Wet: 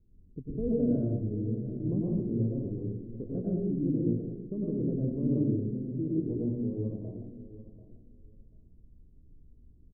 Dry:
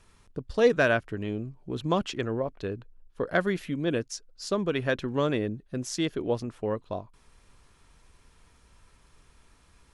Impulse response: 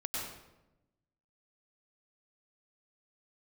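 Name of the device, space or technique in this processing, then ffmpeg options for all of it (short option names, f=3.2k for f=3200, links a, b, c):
next room: -filter_complex "[0:a]lowpass=f=340:w=0.5412,lowpass=f=340:w=1.3066,aecho=1:1:739|1478:0.178|0.032[a];[1:a]atrim=start_sample=2205[b];[a][b]afir=irnorm=-1:irlink=0,volume=-1dB"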